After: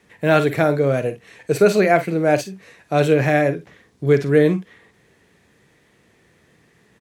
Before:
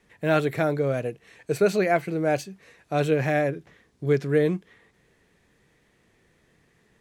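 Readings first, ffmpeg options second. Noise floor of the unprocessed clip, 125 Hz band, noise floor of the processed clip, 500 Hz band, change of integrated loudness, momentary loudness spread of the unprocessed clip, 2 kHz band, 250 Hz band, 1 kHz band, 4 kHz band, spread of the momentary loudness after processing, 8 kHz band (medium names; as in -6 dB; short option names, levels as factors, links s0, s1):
-65 dBFS, +6.5 dB, -58 dBFS, +6.5 dB, +6.5 dB, 11 LU, +7.0 dB, +7.0 dB, +6.5 dB, +7.0 dB, 11 LU, +7.0 dB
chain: -af "highpass=67,aecho=1:1:43|53:0.178|0.2,volume=2.11"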